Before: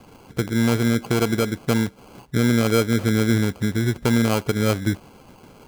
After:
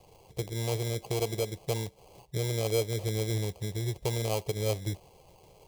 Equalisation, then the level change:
phaser with its sweep stopped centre 600 Hz, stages 4
−6.0 dB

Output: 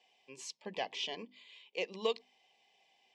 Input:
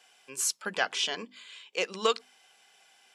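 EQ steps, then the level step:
Butterworth band-reject 1,400 Hz, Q 1.5
high-frequency loss of the air 160 metres
−5.0 dB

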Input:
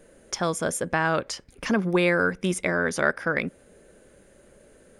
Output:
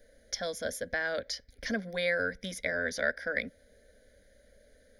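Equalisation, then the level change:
phaser with its sweep stopped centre 370 Hz, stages 4
phaser with its sweep stopped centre 1,800 Hz, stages 8
0.0 dB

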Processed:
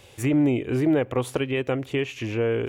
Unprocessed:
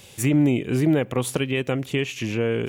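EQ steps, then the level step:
parametric band 180 Hz −12.5 dB 0.66 octaves
high-shelf EQ 3,000 Hz −11.5 dB
+1.5 dB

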